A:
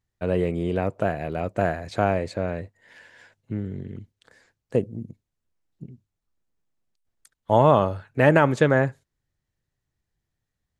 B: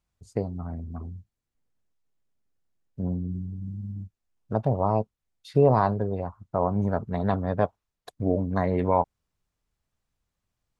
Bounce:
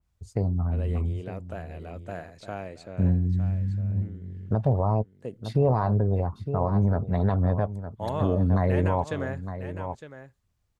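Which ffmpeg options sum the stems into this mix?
-filter_complex "[0:a]adynamicequalizer=threshold=0.0126:dfrequency=2700:dqfactor=0.7:tfrequency=2700:tqfactor=0.7:attack=5:release=100:ratio=0.375:range=3:mode=boostabove:tftype=highshelf,adelay=500,volume=-14dB,asplit=2[a][b];[b]volume=-11.5dB[c];[1:a]equalizer=f=74:t=o:w=1.7:g=8.5,aphaser=in_gain=1:out_gain=1:delay=2.7:decay=0.2:speed=2:type=triangular,adynamicequalizer=threshold=0.0126:dfrequency=2000:dqfactor=0.7:tfrequency=2000:tqfactor=0.7:attack=5:release=100:ratio=0.375:range=3:mode=cutabove:tftype=highshelf,volume=1dB,asplit=2[d][e];[e]volume=-14.5dB[f];[c][f]amix=inputs=2:normalize=0,aecho=0:1:909:1[g];[a][d][g]amix=inputs=3:normalize=0,alimiter=limit=-13dB:level=0:latency=1:release=86"

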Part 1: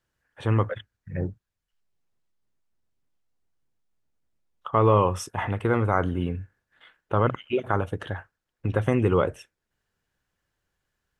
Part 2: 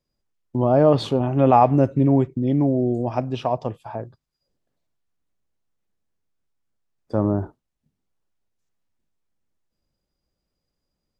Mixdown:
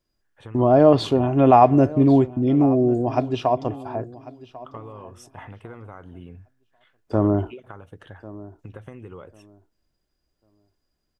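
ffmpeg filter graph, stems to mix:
-filter_complex "[0:a]acompressor=threshold=-26dB:ratio=12,volume=-9.5dB[a];[1:a]aecho=1:1:2.9:0.35,volume=1.5dB,asplit=2[b][c];[c]volume=-19dB,aecho=0:1:1095|2190|3285:1|0.21|0.0441[d];[a][b][d]amix=inputs=3:normalize=0"

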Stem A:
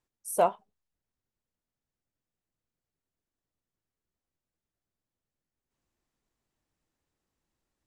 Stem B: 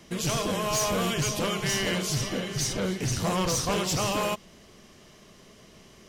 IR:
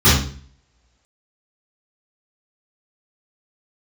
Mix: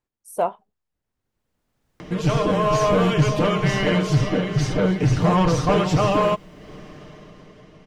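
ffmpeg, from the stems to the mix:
-filter_complex "[0:a]dynaudnorm=f=400:g=7:m=15dB,volume=1.5dB[a];[1:a]aemphasis=mode=reproduction:type=75fm,aecho=1:1:6.6:0.52,acompressor=mode=upward:threshold=-35dB:ratio=2.5,adelay=2000,volume=-5dB[b];[a][b]amix=inputs=2:normalize=0,highshelf=f=3.3k:g=-8,dynaudnorm=f=230:g=13:m=13dB"

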